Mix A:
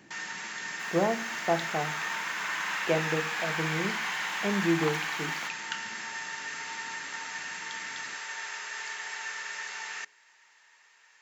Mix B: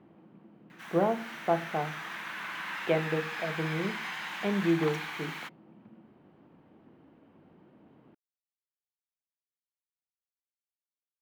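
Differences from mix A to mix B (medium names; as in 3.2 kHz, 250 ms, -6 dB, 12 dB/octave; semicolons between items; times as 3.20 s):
first sound: muted; second sound -4.0 dB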